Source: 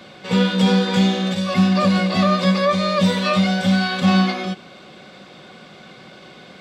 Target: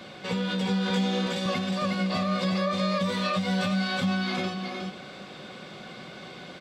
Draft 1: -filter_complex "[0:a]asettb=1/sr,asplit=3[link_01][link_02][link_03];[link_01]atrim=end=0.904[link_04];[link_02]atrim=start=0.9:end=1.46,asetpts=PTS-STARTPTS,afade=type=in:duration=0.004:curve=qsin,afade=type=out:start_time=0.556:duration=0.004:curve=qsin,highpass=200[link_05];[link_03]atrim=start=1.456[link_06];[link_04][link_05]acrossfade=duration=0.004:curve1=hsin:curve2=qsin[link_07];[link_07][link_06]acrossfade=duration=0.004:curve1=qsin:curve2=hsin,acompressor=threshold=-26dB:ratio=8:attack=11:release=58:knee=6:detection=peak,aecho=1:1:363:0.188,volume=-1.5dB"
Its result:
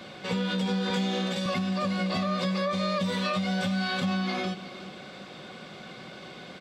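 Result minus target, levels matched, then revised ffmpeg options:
echo-to-direct −10 dB
-filter_complex "[0:a]asettb=1/sr,asplit=3[link_01][link_02][link_03];[link_01]atrim=end=0.904[link_04];[link_02]atrim=start=0.9:end=1.46,asetpts=PTS-STARTPTS,afade=type=in:duration=0.004:curve=qsin,afade=type=out:start_time=0.556:duration=0.004:curve=qsin,highpass=200[link_05];[link_03]atrim=start=1.456[link_06];[link_04][link_05]acrossfade=duration=0.004:curve1=hsin:curve2=qsin[link_07];[link_07][link_06]acrossfade=duration=0.004:curve1=qsin:curve2=hsin,acompressor=threshold=-26dB:ratio=8:attack=11:release=58:knee=6:detection=peak,aecho=1:1:363:0.596,volume=-1.5dB"

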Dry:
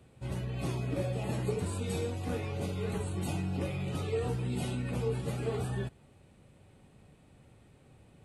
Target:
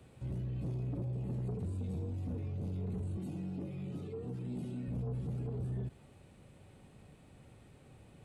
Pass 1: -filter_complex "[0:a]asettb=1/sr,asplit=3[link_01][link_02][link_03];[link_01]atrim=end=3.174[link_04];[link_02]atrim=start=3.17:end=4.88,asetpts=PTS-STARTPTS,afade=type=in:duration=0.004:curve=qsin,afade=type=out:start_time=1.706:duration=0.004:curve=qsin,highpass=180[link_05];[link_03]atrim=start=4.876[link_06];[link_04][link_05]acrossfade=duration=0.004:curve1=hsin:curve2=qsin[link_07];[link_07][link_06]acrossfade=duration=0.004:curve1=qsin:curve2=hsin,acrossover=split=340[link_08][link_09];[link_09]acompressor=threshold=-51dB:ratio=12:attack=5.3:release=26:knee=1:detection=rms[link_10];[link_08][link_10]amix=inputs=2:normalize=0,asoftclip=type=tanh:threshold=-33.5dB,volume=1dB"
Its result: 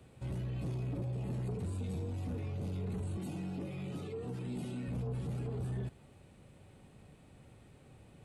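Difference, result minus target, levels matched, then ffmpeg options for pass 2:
downward compressor: peak gain reduction −8.5 dB
-filter_complex "[0:a]asettb=1/sr,asplit=3[link_01][link_02][link_03];[link_01]atrim=end=3.174[link_04];[link_02]atrim=start=3.17:end=4.88,asetpts=PTS-STARTPTS,afade=type=in:duration=0.004:curve=qsin,afade=type=out:start_time=1.706:duration=0.004:curve=qsin,highpass=180[link_05];[link_03]atrim=start=4.876[link_06];[link_04][link_05]acrossfade=duration=0.004:curve1=hsin:curve2=qsin[link_07];[link_07][link_06]acrossfade=duration=0.004:curve1=qsin:curve2=hsin,acrossover=split=340[link_08][link_09];[link_09]acompressor=threshold=-60dB:ratio=12:attack=5.3:release=26:knee=1:detection=rms[link_10];[link_08][link_10]amix=inputs=2:normalize=0,asoftclip=type=tanh:threshold=-33.5dB,volume=1dB"

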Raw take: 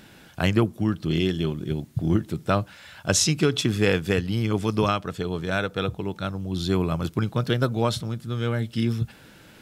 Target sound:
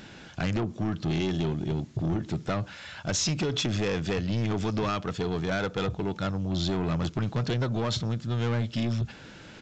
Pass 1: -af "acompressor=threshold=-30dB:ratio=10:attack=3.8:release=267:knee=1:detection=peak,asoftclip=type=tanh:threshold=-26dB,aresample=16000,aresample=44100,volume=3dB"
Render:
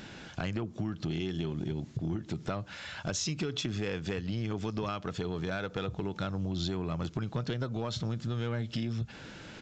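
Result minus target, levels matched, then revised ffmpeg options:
downward compressor: peak gain reduction +10 dB
-af "acompressor=threshold=-19dB:ratio=10:attack=3.8:release=267:knee=1:detection=peak,asoftclip=type=tanh:threshold=-26dB,aresample=16000,aresample=44100,volume=3dB"

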